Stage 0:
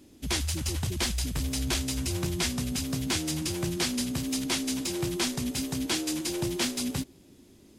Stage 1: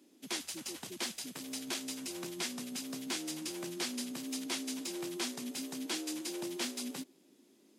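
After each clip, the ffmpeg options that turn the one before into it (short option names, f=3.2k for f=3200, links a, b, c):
-af "highpass=f=220:w=0.5412,highpass=f=220:w=1.3066,volume=-8dB"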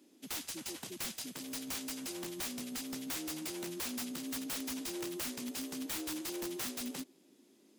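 -af "aeval=exprs='(mod(42.2*val(0)+1,2)-1)/42.2':c=same"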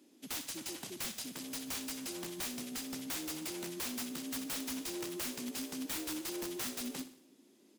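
-af "aecho=1:1:62|124|186|248|310:0.224|0.112|0.056|0.028|0.014"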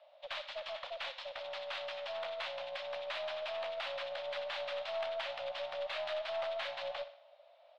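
-af "highpass=f=260:t=q:w=0.5412,highpass=f=260:t=q:w=1.307,lowpass=f=3.5k:t=q:w=0.5176,lowpass=f=3.5k:t=q:w=0.7071,lowpass=f=3.5k:t=q:w=1.932,afreqshift=310,aeval=exprs='0.0299*(cos(1*acos(clip(val(0)/0.0299,-1,1)))-cos(1*PI/2))+0.00075*(cos(6*acos(clip(val(0)/0.0299,-1,1)))-cos(6*PI/2))':c=same,volume=4.5dB"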